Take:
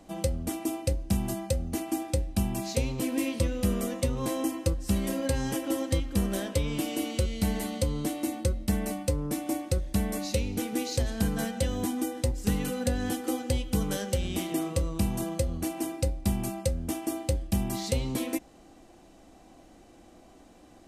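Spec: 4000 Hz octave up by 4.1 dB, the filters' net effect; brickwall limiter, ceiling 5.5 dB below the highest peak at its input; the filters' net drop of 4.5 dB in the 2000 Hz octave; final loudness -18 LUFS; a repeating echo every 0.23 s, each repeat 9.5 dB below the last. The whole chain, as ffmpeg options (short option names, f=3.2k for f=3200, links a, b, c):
-af "equalizer=f=2k:t=o:g=-8.5,equalizer=f=4k:t=o:g=7.5,alimiter=limit=-19dB:level=0:latency=1,aecho=1:1:230|460|690|920:0.335|0.111|0.0365|0.012,volume=13dB"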